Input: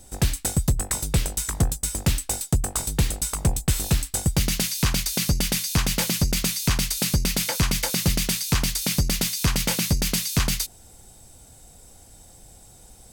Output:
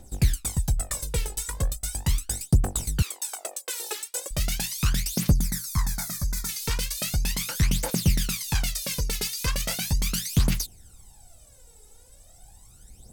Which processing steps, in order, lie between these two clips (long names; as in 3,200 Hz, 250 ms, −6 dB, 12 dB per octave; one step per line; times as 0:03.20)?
0:03.02–0:04.31: Butterworth high-pass 350 Hz 36 dB per octave
0:05.33–0:06.49: phaser with its sweep stopped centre 1,200 Hz, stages 4
phase shifter 0.38 Hz, delay 2.4 ms, feedback 71%
level −7.5 dB